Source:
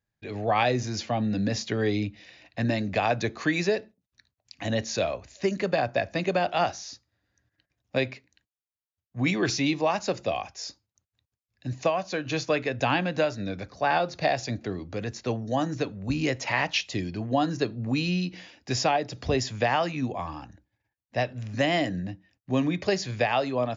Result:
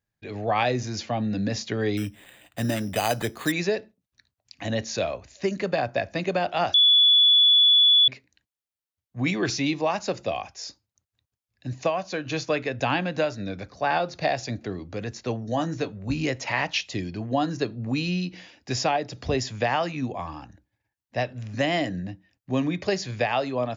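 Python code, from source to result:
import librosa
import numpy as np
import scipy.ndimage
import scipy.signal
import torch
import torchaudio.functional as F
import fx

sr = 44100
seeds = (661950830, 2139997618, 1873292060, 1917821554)

y = fx.resample_bad(x, sr, factor=8, down='none', up='hold', at=(1.97, 3.52))
y = fx.doubler(y, sr, ms=18.0, db=-9.0, at=(15.46, 16.25))
y = fx.edit(y, sr, fx.bleep(start_s=6.74, length_s=1.34, hz=3430.0, db=-13.5), tone=tone)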